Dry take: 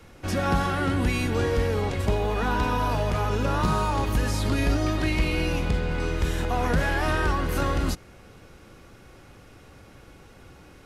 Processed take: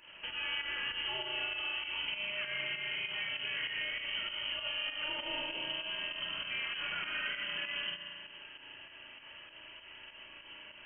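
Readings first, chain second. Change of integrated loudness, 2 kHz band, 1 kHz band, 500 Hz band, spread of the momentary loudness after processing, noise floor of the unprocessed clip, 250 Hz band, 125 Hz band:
-10.0 dB, -4.5 dB, -19.0 dB, -21.5 dB, 15 LU, -50 dBFS, -27.5 dB, -35.0 dB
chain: high-pass 130 Hz 6 dB/octave; compression 2.5:1, threshold -40 dBFS, peak gain reduction 13 dB; frequency inversion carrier 3.1 kHz; spring tank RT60 2 s, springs 36 ms, chirp 65 ms, DRR 0 dB; volume shaper 98 bpm, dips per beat 2, -8 dB, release 125 ms; trim -2.5 dB

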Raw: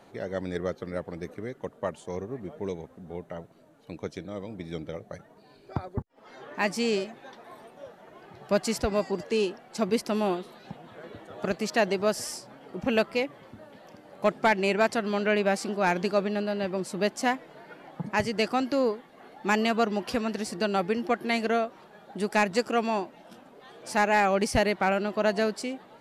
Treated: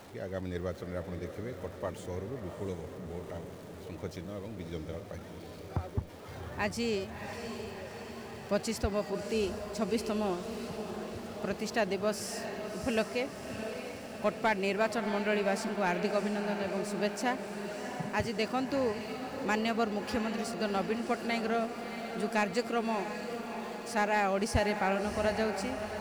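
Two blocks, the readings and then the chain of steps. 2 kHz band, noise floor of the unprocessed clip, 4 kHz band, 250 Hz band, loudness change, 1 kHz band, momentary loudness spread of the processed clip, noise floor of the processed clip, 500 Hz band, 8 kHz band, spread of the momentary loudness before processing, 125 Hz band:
-5.0 dB, -55 dBFS, -4.5 dB, -4.0 dB, -5.5 dB, -5.0 dB, 12 LU, -46 dBFS, -5.0 dB, -4.0 dB, 18 LU, -1.5 dB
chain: jump at every zero crossing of -42 dBFS; peaking EQ 82 Hz +10 dB 0.77 oct; echo that smears into a reverb 671 ms, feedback 63%, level -8 dB; trim -6.5 dB

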